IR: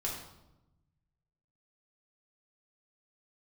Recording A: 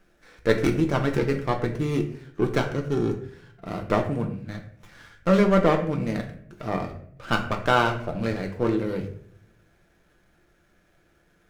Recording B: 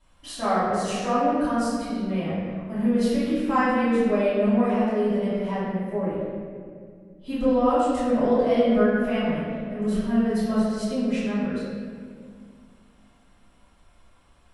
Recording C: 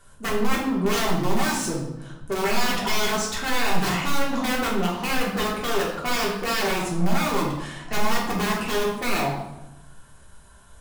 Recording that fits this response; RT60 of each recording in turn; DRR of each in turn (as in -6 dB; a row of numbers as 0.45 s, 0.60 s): C; 0.60 s, 2.1 s, 0.95 s; 3.0 dB, -13.5 dB, -4.0 dB